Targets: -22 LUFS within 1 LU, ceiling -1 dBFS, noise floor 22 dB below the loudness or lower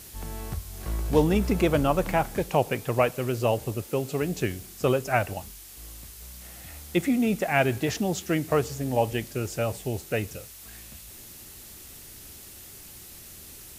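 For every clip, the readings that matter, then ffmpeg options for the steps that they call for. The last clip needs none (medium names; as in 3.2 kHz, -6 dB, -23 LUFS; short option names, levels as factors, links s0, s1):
noise floor -46 dBFS; noise floor target -49 dBFS; loudness -26.5 LUFS; peak level -7.0 dBFS; loudness target -22.0 LUFS
-> -af "afftdn=nr=6:nf=-46"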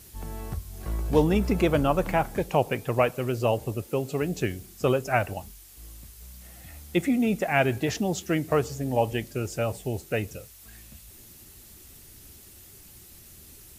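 noise floor -50 dBFS; loudness -26.5 LUFS; peak level -7.0 dBFS; loudness target -22.0 LUFS
-> -af "volume=1.68"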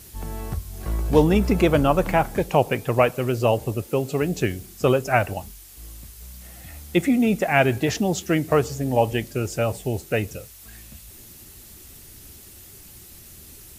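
loudness -22.0 LUFS; peak level -2.5 dBFS; noise floor -45 dBFS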